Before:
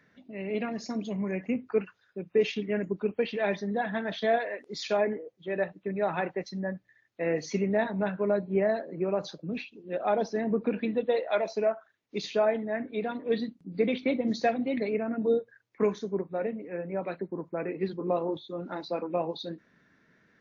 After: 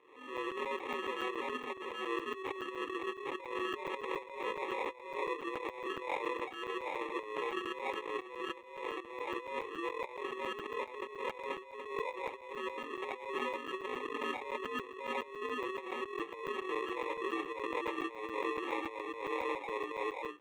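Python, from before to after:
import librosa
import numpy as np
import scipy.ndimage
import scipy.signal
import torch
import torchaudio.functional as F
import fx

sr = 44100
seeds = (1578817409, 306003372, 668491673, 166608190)

p1 = fx.partial_stretch(x, sr, pct=78)
p2 = p1 + fx.echo_single(p1, sr, ms=783, db=-4.0, dry=0)
p3 = fx.vibrato(p2, sr, rate_hz=5.6, depth_cents=24.0)
p4 = fx.sample_hold(p3, sr, seeds[0], rate_hz=1500.0, jitter_pct=0)
p5 = fx.bandpass_edges(p4, sr, low_hz=490.0, high_hz=3400.0)
p6 = fx.fixed_phaser(p5, sr, hz=1000.0, stages=8)
p7 = fx.doubler(p6, sr, ms=24.0, db=-9.5)
p8 = fx.over_compress(p7, sr, threshold_db=-41.0, ratio=-0.5)
p9 = fx.buffer_crackle(p8, sr, first_s=0.37, period_s=0.14, block=256, kind='zero')
p10 = fx.pre_swell(p9, sr, db_per_s=79.0)
y = F.gain(torch.from_numpy(p10), 1.0).numpy()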